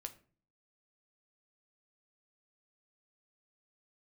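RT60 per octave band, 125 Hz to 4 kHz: 0.65, 0.65, 0.45, 0.40, 0.35, 0.30 s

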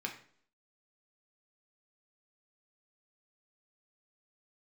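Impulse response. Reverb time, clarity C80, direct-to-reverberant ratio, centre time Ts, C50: 0.55 s, 13.5 dB, 1.0 dB, 17 ms, 9.5 dB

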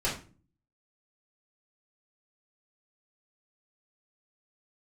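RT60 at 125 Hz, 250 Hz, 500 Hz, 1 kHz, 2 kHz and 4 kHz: 0.70, 0.60, 0.40, 0.35, 0.35, 0.30 s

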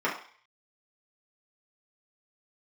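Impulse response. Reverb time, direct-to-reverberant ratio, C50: 0.45 s, -6.0 dB, 7.0 dB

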